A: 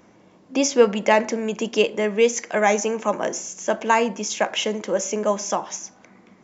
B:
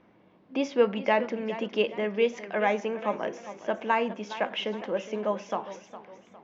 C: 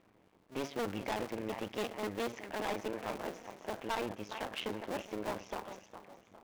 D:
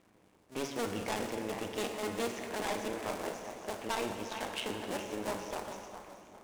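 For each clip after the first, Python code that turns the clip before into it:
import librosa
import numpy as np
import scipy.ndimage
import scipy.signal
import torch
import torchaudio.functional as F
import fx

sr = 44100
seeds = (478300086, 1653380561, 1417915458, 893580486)

y1 = scipy.signal.sosfilt(scipy.signal.butter(4, 3800.0, 'lowpass', fs=sr, output='sos'), x)
y1 = fx.echo_warbled(y1, sr, ms=411, feedback_pct=41, rate_hz=2.8, cents=100, wet_db=-14.0)
y1 = y1 * librosa.db_to_amplitude(-7.0)
y2 = fx.cycle_switch(y1, sr, every=2, mode='muted')
y2 = np.clip(y2, -10.0 ** (-26.5 / 20.0), 10.0 ** (-26.5 / 20.0))
y2 = y2 * librosa.db_to_amplitude(-4.0)
y3 = fx.peak_eq(y2, sr, hz=8600.0, db=8.0, octaves=1.5)
y3 = fx.rev_plate(y3, sr, seeds[0], rt60_s=2.6, hf_ratio=0.75, predelay_ms=0, drr_db=4.0)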